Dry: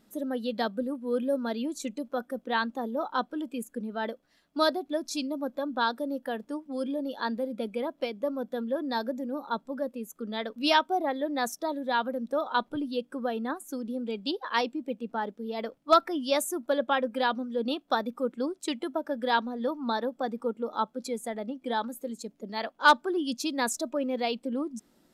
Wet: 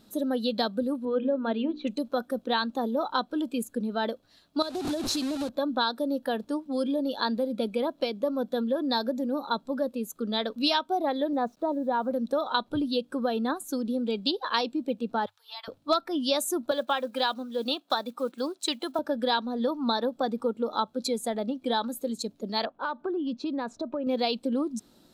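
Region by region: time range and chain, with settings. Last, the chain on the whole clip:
0:01.05–0:01.87: Butterworth low-pass 3,100 Hz + mains-hum notches 60/120/180/240/300/360/420/480 Hz
0:04.62–0:05.49: linear delta modulator 64 kbit/s, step −32 dBFS + parametric band 350 Hz +5.5 dB 1.8 octaves + downward compressor 16 to 1, threshold −31 dBFS
0:11.33–0:12.11: low-pass filter 1,000 Hz + bit-depth reduction 12 bits, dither none
0:15.26–0:15.68: Butterworth high-pass 850 Hz 48 dB per octave + downward compressor 3 to 1, threshold −44 dBFS
0:16.71–0:18.99: one scale factor per block 7 bits + high-pass filter 320 Hz + parametric band 420 Hz −5 dB 0.93 octaves
0:22.65–0:24.07: low-pass filter 1,600 Hz + downward compressor 8 to 1, threshold −32 dBFS
whole clip: thirty-one-band graphic EQ 100 Hz +11 dB, 2,000 Hz −7 dB, 4,000 Hz +9 dB; downward compressor 4 to 1, threshold −28 dBFS; level +5 dB

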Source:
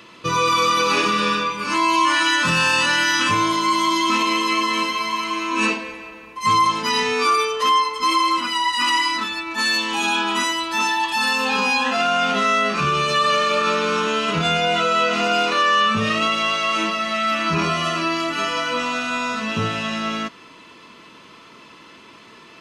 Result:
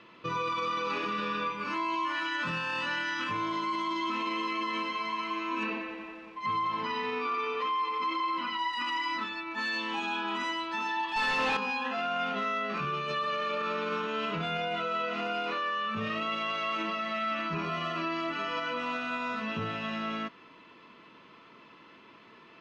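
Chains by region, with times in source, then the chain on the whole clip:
0:05.63–0:08.59: low-pass filter 4,200 Hz + feedback echo at a low word length 89 ms, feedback 80%, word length 7 bits, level −12 dB
0:11.16–0:11.57: high-pass filter 260 Hz 24 dB per octave + leveller curve on the samples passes 5
whole clip: low-pass filter 3,000 Hz 12 dB per octave; brickwall limiter −15.5 dBFS; parametric band 67 Hz −8.5 dB 0.82 octaves; level −8.5 dB

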